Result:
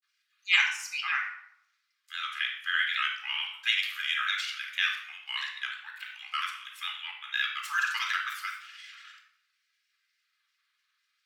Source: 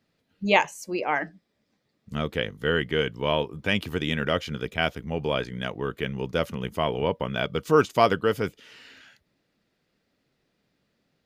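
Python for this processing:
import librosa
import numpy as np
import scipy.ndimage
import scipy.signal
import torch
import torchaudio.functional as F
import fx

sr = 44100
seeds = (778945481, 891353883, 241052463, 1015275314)

y = scipy.signal.sosfilt(scipy.signal.butter(8, 1300.0, 'highpass', fs=sr, output='sos'), x)
y = fx.granulator(y, sr, seeds[0], grain_ms=100.0, per_s=20.0, spray_ms=39.0, spread_st=3)
y = fx.room_shoebox(y, sr, seeds[1], volume_m3=2200.0, walls='furnished', distance_m=3.9)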